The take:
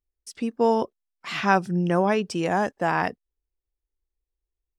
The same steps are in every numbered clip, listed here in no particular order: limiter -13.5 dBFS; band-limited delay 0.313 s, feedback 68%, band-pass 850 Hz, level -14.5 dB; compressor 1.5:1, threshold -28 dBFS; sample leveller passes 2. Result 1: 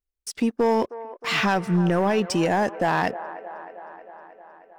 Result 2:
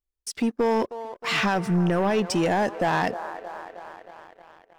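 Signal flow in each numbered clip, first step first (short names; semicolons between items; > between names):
compressor > sample leveller > band-limited delay > limiter; limiter > compressor > band-limited delay > sample leveller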